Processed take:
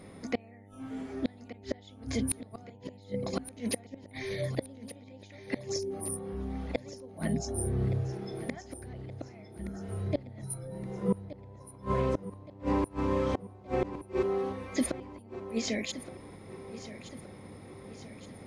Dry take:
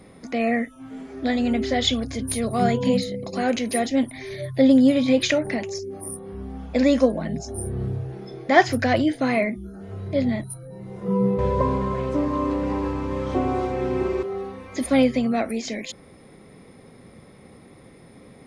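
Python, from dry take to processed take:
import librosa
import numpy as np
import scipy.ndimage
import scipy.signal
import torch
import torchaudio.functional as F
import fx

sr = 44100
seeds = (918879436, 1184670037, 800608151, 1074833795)

y = fx.gate_flip(x, sr, shuts_db=-15.0, range_db=-32)
y = fx.dmg_buzz(y, sr, base_hz=100.0, harmonics=9, level_db=-53.0, tilt_db=-5, odd_only=False)
y = fx.echo_feedback(y, sr, ms=1171, feedback_pct=52, wet_db=-14)
y = y * librosa.db_to_amplitude(-2.0)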